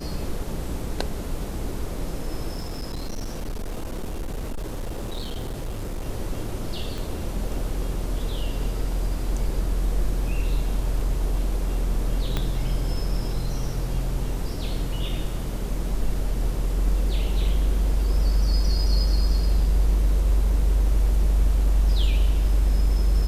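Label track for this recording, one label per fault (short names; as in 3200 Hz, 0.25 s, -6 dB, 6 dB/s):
2.510000	6.070000	clipped -26 dBFS
6.980000	6.980000	pop
12.370000	12.370000	pop -11 dBFS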